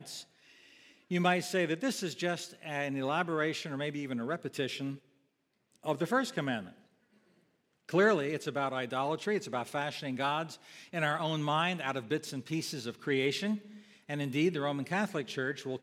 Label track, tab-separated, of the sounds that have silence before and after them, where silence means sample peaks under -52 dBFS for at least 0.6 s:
5.720000	6.800000	sound